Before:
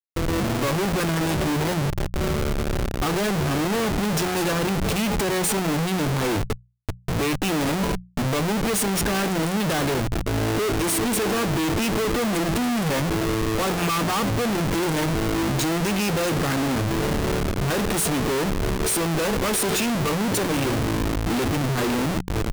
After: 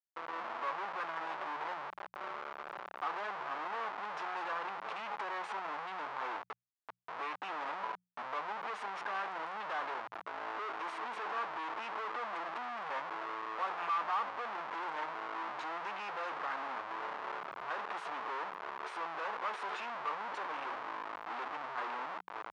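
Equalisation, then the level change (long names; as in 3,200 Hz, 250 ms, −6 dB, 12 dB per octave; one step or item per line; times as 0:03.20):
four-pole ladder band-pass 1,200 Hz, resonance 40%
high-frequency loss of the air 54 metres
+1.0 dB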